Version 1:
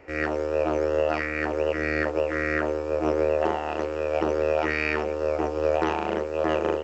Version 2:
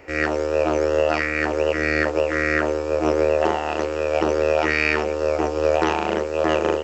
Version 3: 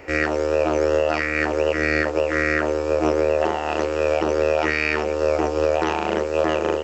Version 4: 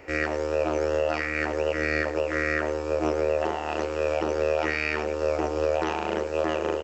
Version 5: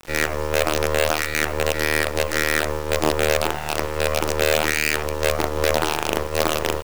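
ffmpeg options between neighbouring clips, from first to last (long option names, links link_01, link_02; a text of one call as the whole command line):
ffmpeg -i in.wav -af "highshelf=frequency=3500:gain=8.5,volume=4dB" out.wav
ffmpeg -i in.wav -af "alimiter=limit=-13dB:level=0:latency=1:release=498,volume=4dB" out.wav
ffmpeg -i in.wav -af "aecho=1:1:106:0.178,volume=-5.5dB" out.wav
ffmpeg -i in.wav -af "acrusher=bits=4:dc=4:mix=0:aa=0.000001,volume=5.5dB" out.wav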